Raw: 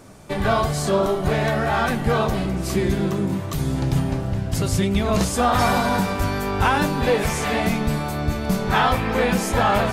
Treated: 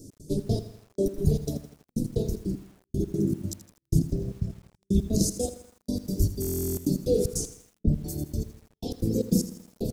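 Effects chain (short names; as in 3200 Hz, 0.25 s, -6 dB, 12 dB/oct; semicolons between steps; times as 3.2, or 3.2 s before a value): notches 60/120/180/240/300/360/420/480/540 Hz; reverb removal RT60 2 s; 7.46–7.99 EQ curve 160 Hz 0 dB, 800 Hz +8 dB, 8000 Hz -26 dB; feedback echo 97 ms, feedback 22%, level -9 dB; 2.22–2.7 compressor 6:1, threshold -25 dBFS, peak gain reduction 5.5 dB; 3.99–4.42 air absorption 92 m; FDN reverb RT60 0.54 s, low-frequency decay 1×, high-frequency decay 0.65×, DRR 10 dB; step gate "x.xx.x...." 153 bpm -60 dB; Chebyshev band-stop 400–5300 Hz, order 3; stuck buffer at 6.4, samples 1024, times 15; lo-fi delay 81 ms, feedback 55%, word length 8-bit, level -13.5 dB; gain +2.5 dB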